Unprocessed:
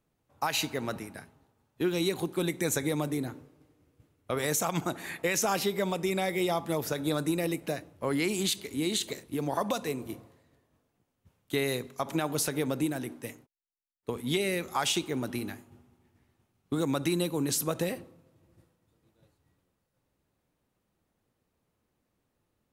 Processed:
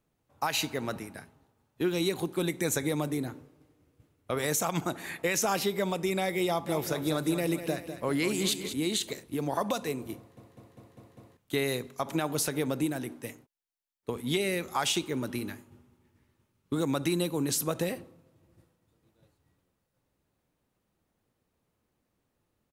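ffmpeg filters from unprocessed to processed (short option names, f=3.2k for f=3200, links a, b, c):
-filter_complex "[0:a]asplit=3[a][b][c];[a]afade=t=out:st=6.66:d=0.02[d];[b]aecho=1:1:200|400|600|800|1000:0.316|0.155|0.0759|0.0372|0.0182,afade=t=in:st=6.66:d=0.02,afade=t=out:st=8.72:d=0.02[e];[c]afade=t=in:st=8.72:d=0.02[f];[d][e][f]amix=inputs=3:normalize=0,asettb=1/sr,asplit=3[g][h][i];[g]atrim=end=15.034[j];[h]atrim=start=15.03:end=16.76,asetpts=PTS-STARTPTS,afade=t=in:d=0.004:c=qsin,afade=t=out:st=1.726:d=0.004:c=qsin,asuperstop=centerf=740:order=4:qfactor=5.5[k];[i]atrim=start=16.756[l];[j][k]acrossfade=d=0.004:c1=hsin:c2=qsin[m];[m][l]acrossfade=d=0.004:c1=qsin:c2=hsin,asplit=7[n][o][p][q][r][s][t];[n]atrim=end=10.372[u];[o]atrim=start=10.168:end=10.372[v];[p]atrim=start=10.168:end=10.372[w];[q]atrim=start=10.168:end=10.372[x];[r]atrim=start=10.168:end=10.372[y];[s]atrim=start=10.168:end=10.372[z];[t]atrim=start=11.368[aa];[u][v]acrossfade=d=0.004:c1=hsin:c2=hsin[ab];[ab][w]acrossfade=d=0.004:c1=hsin:c2=hsin[ac];[ac][x]acrossfade=d=0.004:c1=hsin:c2=hsin[ad];[ad][y]acrossfade=d=0.004:c1=hsin:c2=hsin[ae];[ae][z]acrossfade=d=0.004:c1=hsin:c2=hsin[af];[af][aa]acrossfade=d=0.004:c1=hsin:c2=hsin"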